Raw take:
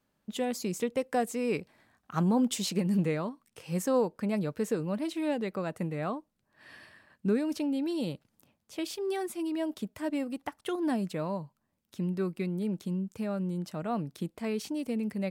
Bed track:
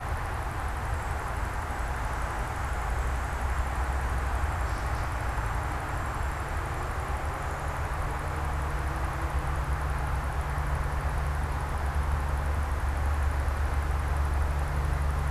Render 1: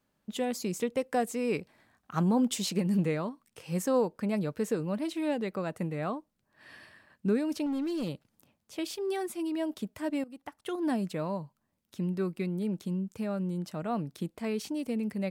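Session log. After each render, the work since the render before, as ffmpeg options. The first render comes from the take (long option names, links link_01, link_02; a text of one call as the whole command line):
ffmpeg -i in.wav -filter_complex "[0:a]asettb=1/sr,asplit=3[link_01][link_02][link_03];[link_01]atrim=end=7.664[link_04];[link_02]atrim=start=7.66:end=8.09,asetpts=PTS-STARTPTS,afade=type=in:duration=0.004:curve=qsin,afade=type=out:start_time=0.426:duration=0.004:curve=qsin,volume=28.5dB,asoftclip=hard,volume=-28.5dB[link_05];[link_03]atrim=start=8.086[link_06];[link_04][link_05]acrossfade=duration=0.004:curve1=hsin:curve2=qsin[link_07];[link_07][link_06]acrossfade=duration=0.004:curve1=qsin:curve2=hsin,asplit=2[link_08][link_09];[link_08]atrim=end=10.24,asetpts=PTS-STARTPTS,afade=type=out:start_time=10.236:duration=0.004:curve=hsin:silence=0.188365[link_10];[link_09]atrim=start=10.24,asetpts=PTS-STARTPTS,afade=type=in:duration=0.64:silence=0.188365[link_11];[link_10][link_11]concat=n=2:v=0:a=1" out.wav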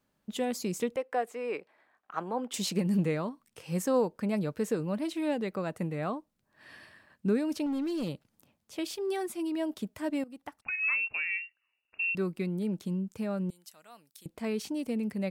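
ffmpeg -i in.wav -filter_complex "[0:a]asettb=1/sr,asplit=3[link_01][link_02][link_03];[link_01]atrim=end=0.964[link_04];[link_02]atrim=start=0.96:end=2.54,asetpts=PTS-STARTPTS,afade=type=in:duration=0.004:curve=qsin,afade=type=out:start_time=1.576:duration=0.004:curve=qsin,acrossover=split=360 2900:gain=0.0631 1 0.2[link_05][link_06][link_07];[link_05][link_06][link_07]amix=inputs=3:normalize=0[link_08];[link_03]atrim=start=2.536[link_09];[link_04][link_08]acrossfade=duration=0.004:curve1=hsin:curve2=qsin[link_10];[link_10][link_09]acrossfade=duration=0.004:curve1=qsin:curve2=hsin,asettb=1/sr,asplit=3[link_11][link_12][link_13];[link_11]atrim=end=10.624[link_14];[link_12]atrim=start=10.62:end=12.15,asetpts=PTS-STARTPTS,afade=type=in:duration=0.004:curve=qsin,afade=type=out:start_time=1.526:duration=0.004:curve=qsin,lowpass=frequency=2500:width_type=q:width=0.5098,lowpass=frequency=2500:width_type=q:width=0.6013,lowpass=frequency=2500:width_type=q:width=0.9,lowpass=frequency=2500:width_type=q:width=2.563,afreqshift=-2900[link_15];[link_13]atrim=start=12.146[link_16];[link_14][link_15]acrossfade=duration=0.004:curve1=hsin:curve2=qsin[link_17];[link_17][link_16]acrossfade=duration=0.004:curve1=qsin:curve2=hsin,asettb=1/sr,asplit=3[link_18][link_19][link_20];[link_18]atrim=end=13.504[link_21];[link_19]atrim=start=13.5:end=14.26,asetpts=PTS-STARTPTS,afade=type=in:duration=0.004:curve=qsin,afade=type=out:start_time=0.756:duration=0.004:curve=qsin,aderivative[link_22];[link_20]atrim=start=14.256[link_23];[link_21][link_22]acrossfade=duration=0.004:curve1=hsin:curve2=qsin[link_24];[link_24][link_23]acrossfade=duration=0.004:curve1=qsin:curve2=hsin" out.wav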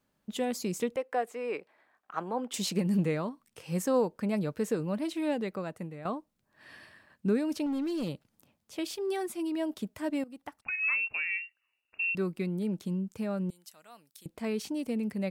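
ffmpeg -i in.wav -filter_complex "[0:a]asplit=2[link_01][link_02];[link_01]atrim=end=6.05,asetpts=PTS-STARTPTS,afade=type=out:start_time=5.39:duration=0.66:silence=0.266073[link_03];[link_02]atrim=start=6.05,asetpts=PTS-STARTPTS,afade=type=in:duration=0.004:curve=hsin:silence=0.266073[link_04];[link_03][link_04]concat=n=2:v=0:a=1" out.wav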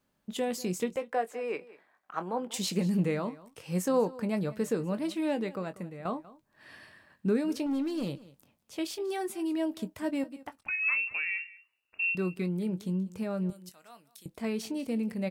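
ffmpeg -i in.wav -filter_complex "[0:a]asplit=2[link_01][link_02];[link_02]adelay=22,volume=-12dB[link_03];[link_01][link_03]amix=inputs=2:normalize=0,aecho=1:1:191:0.106" out.wav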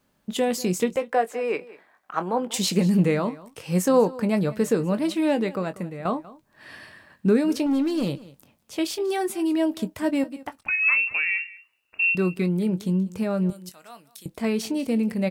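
ffmpeg -i in.wav -af "volume=8dB" out.wav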